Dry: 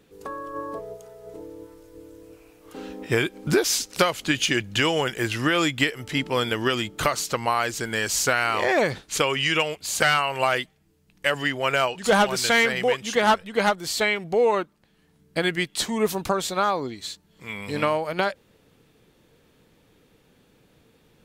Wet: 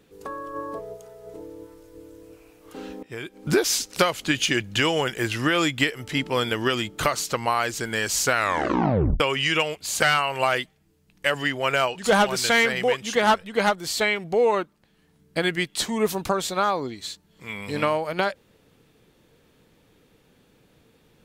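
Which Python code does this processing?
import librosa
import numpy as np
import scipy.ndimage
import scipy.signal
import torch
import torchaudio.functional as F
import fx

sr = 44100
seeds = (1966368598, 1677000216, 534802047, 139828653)

y = fx.edit(x, sr, fx.fade_in_from(start_s=3.03, length_s=0.5, curve='qua', floor_db=-16.5),
    fx.tape_stop(start_s=8.34, length_s=0.86), tone=tone)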